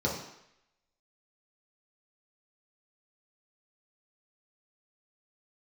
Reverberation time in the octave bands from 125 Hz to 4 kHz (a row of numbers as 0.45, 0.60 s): 0.60, 0.65, 0.75, 0.80, 0.90, 0.80 s